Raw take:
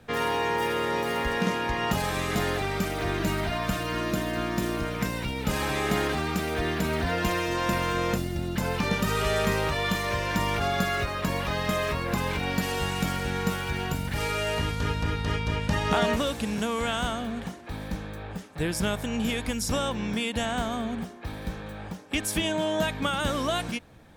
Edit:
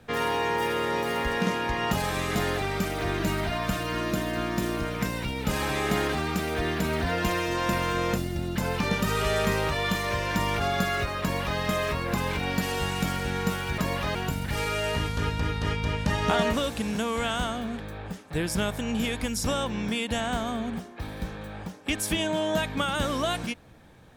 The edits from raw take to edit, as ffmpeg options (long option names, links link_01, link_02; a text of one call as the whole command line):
ffmpeg -i in.wav -filter_complex "[0:a]asplit=4[link_01][link_02][link_03][link_04];[link_01]atrim=end=13.782[link_05];[link_02]atrim=start=11.218:end=11.592[link_06];[link_03]atrim=start=13.778:end=17.432[link_07];[link_04]atrim=start=18.048[link_08];[link_05][link_06]acrossfade=duration=0.004:curve1=hsin:curve2=hsin[link_09];[link_09][link_07]acrossfade=duration=0.004:curve1=hsin:curve2=hsin[link_10];[link_10][link_08]acrossfade=duration=0.004:curve1=hsin:curve2=hsin" out.wav